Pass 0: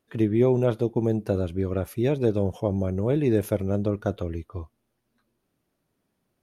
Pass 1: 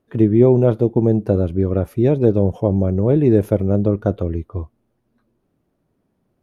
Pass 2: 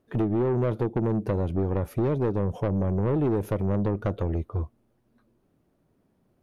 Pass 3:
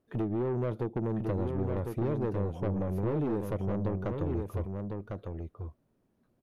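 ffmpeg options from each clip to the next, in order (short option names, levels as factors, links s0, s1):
-af "tiltshelf=f=1400:g=7,volume=1.26"
-af "acompressor=threshold=0.158:ratio=10,asoftclip=type=tanh:threshold=0.106"
-af "aecho=1:1:1052:0.562,volume=0.473"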